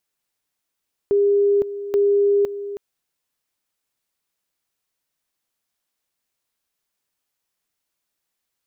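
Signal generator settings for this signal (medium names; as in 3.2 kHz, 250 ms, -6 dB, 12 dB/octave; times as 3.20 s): two-level tone 404 Hz -13.5 dBFS, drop 13 dB, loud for 0.51 s, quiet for 0.32 s, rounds 2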